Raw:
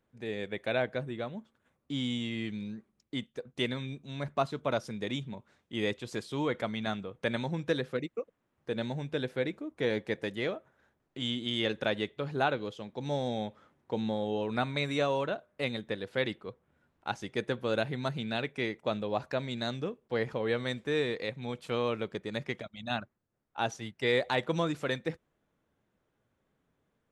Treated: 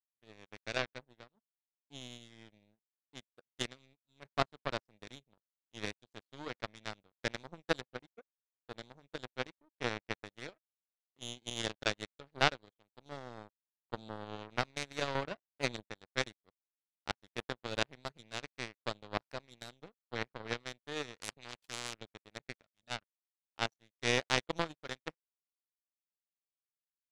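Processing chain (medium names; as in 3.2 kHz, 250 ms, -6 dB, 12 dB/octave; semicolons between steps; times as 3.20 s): 15.15–15.86 s: bass shelf 400 Hz +8 dB; power-law waveshaper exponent 3; 21.21–21.94 s: spectrum-flattening compressor 4:1; trim +8 dB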